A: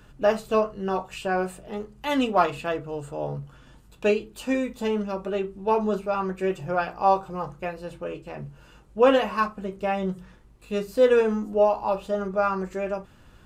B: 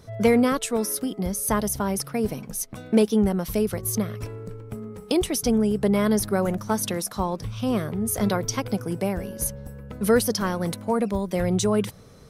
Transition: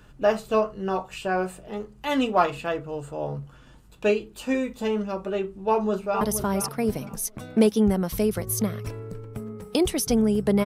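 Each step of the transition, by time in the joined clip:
A
0:05.51–0:06.21: delay throw 470 ms, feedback 25%, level −9 dB
0:06.21: continue with B from 0:01.57

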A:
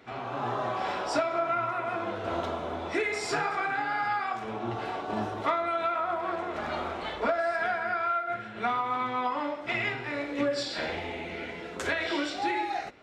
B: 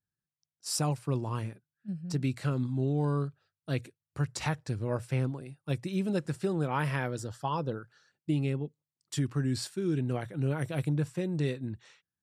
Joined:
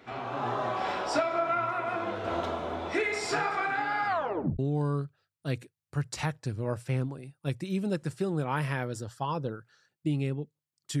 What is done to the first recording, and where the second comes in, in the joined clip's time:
A
0:04.07: tape stop 0.52 s
0:04.59: continue with B from 0:02.82

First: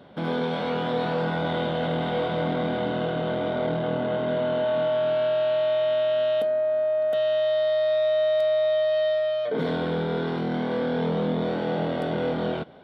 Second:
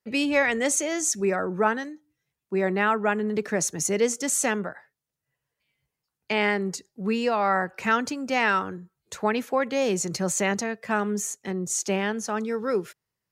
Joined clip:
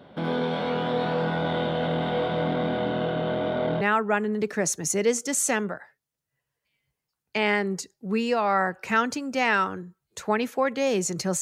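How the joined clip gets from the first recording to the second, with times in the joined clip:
first
0:03.81: continue with second from 0:02.76

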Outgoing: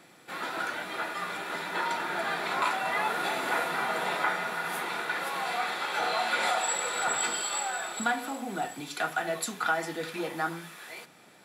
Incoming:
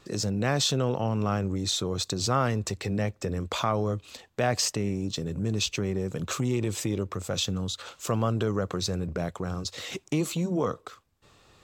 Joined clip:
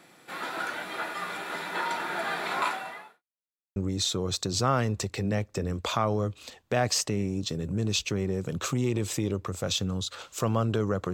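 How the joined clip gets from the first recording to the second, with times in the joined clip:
outgoing
0:02.65–0:03.23: fade out quadratic
0:03.23–0:03.76: silence
0:03.76: continue with incoming from 0:01.43

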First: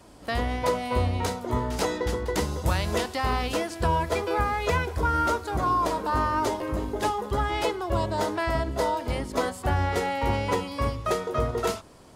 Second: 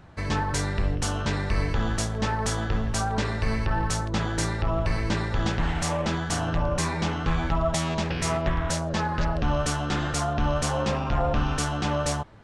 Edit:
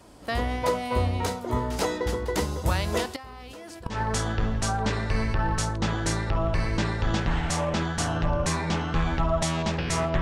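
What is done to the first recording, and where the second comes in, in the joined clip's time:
first
0:03.16–0:04.01: output level in coarse steps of 21 dB
0:03.94: continue with second from 0:02.26, crossfade 0.14 s

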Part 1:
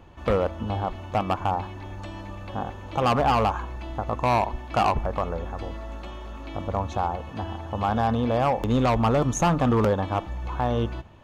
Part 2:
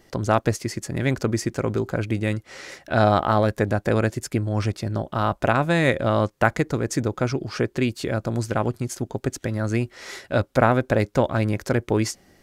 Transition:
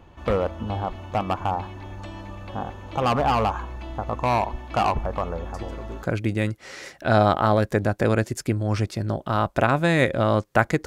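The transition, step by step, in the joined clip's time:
part 1
0:05.54: mix in part 2 from 0:01.40 0.49 s −16 dB
0:06.03: continue with part 2 from 0:01.89

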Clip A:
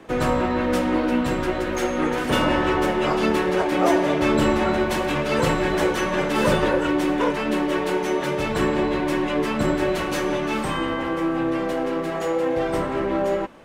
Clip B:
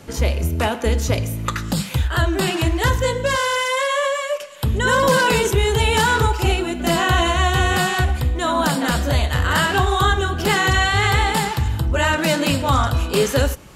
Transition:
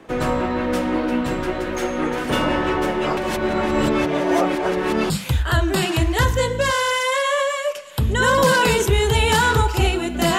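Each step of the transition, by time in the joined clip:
clip A
0:03.17–0:05.10: reverse
0:05.10: continue with clip B from 0:01.75

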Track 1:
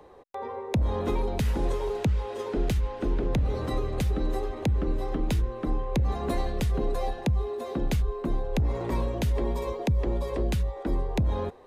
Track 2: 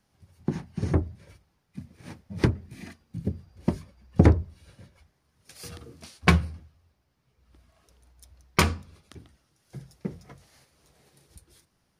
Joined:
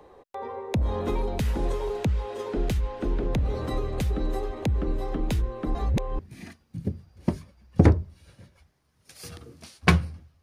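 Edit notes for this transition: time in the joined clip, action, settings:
track 1
0:05.75–0:06.19: reverse
0:06.19: continue with track 2 from 0:02.59

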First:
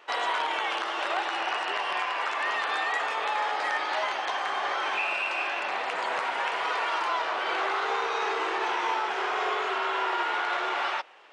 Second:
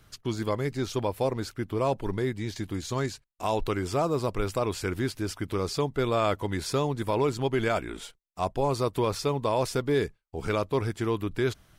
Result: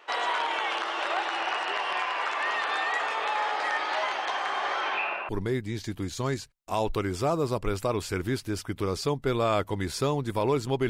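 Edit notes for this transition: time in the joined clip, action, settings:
first
0:04.80–0:05.29: low-pass filter 7,400 Hz → 1,200 Hz
0:05.29: continue with second from 0:02.01

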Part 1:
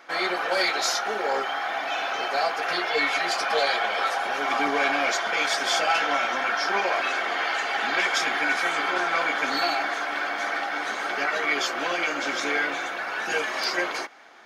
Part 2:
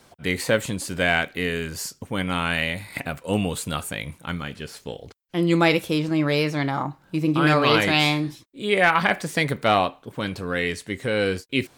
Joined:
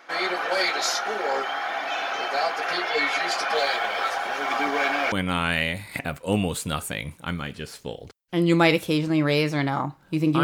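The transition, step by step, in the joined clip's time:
part 1
0:03.55–0:05.12: mu-law and A-law mismatch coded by A
0:05.12: continue with part 2 from 0:02.13

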